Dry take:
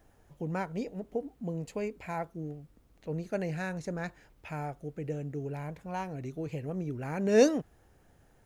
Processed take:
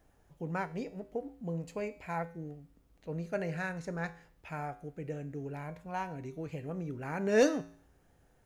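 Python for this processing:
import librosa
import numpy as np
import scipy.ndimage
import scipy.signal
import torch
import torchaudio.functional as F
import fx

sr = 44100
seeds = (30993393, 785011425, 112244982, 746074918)

y = fx.dynamic_eq(x, sr, hz=1400.0, q=0.8, threshold_db=-48.0, ratio=4.0, max_db=6)
y = fx.comb_fb(y, sr, f0_hz=56.0, decay_s=0.52, harmonics='odd', damping=0.0, mix_pct=60)
y = np.clip(10.0 ** (19.5 / 20.0) * y, -1.0, 1.0) / 10.0 ** (19.5 / 20.0)
y = y * librosa.db_to_amplitude(2.5)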